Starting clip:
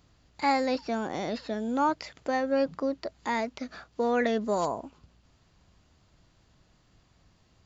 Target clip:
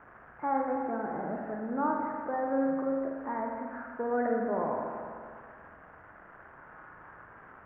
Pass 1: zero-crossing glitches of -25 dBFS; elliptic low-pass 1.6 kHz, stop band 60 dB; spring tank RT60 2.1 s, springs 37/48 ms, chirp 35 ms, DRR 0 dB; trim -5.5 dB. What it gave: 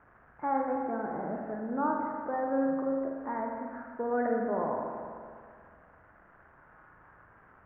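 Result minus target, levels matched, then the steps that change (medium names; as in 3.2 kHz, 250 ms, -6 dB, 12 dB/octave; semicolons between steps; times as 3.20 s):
zero-crossing glitches: distortion -7 dB
change: zero-crossing glitches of -18 dBFS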